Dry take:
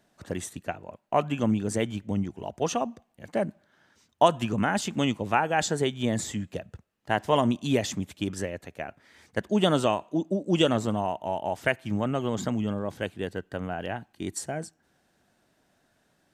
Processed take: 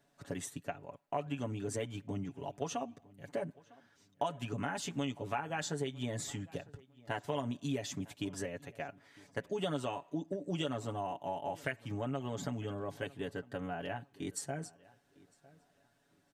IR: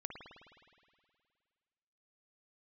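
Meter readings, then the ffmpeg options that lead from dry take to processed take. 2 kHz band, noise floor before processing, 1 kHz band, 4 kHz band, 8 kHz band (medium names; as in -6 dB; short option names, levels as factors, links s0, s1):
-11.0 dB, -70 dBFS, -11.5 dB, -11.0 dB, -8.0 dB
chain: -filter_complex "[0:a]aecho=1:1:7.1:0.79,acompressor=threshold=0.0447:ratio=3,asplit=2[s0][s1];[s1]adelay=954,lowpass=f=3200:p=1,volume=0.075,asplit=2[s2][s3];[s3]adelay=954,lowpass=f=3200:p=1,volume=0.27[s4];[s2][s4]amix=inputs=2:normalize=0[s5];[s0][s5]amix=inputs=2:normalize=0,volume=0.422"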